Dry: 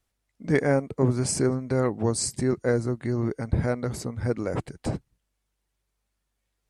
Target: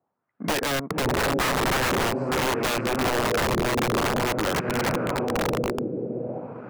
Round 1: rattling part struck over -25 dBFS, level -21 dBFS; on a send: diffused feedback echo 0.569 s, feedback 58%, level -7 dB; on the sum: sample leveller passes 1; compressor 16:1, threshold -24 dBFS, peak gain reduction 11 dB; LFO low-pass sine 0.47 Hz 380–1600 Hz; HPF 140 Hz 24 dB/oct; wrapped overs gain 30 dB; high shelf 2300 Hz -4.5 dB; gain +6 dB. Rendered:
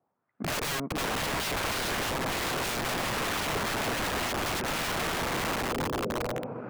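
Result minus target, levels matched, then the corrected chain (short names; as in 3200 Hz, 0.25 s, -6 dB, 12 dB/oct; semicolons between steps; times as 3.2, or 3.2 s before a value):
wrapped overs: distortion +15 dB
rattling part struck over -25 dBFS, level -21 dBFS; on a send: diffused feedback echo 0.569 s, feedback 58%, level -7 dB; on the sum: sample leveller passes 1; compressor 16:1, threshold -24 dBFS, peak gain reduction 11 dB; LFO low-pass sine 0.47 Hz 380–1600 Hz; HPF 140 Hz 24 dB/oct; wrapped overs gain 23 dB; high shelf 2300 Hz -4.5 dB; gain +6 dB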